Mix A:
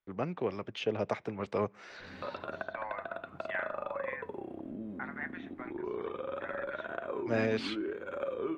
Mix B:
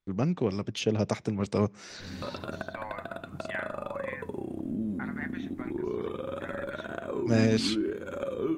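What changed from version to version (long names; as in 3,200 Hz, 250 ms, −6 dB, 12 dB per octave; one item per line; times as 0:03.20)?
master: remove three-way crossover with the lows and the highs turned down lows −12 dB, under 410 Hz, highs −20 dB, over 3,200 Hz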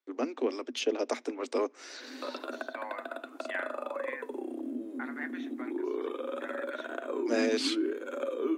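master: add Chebyshev high-pass filter 240 Hz, order 10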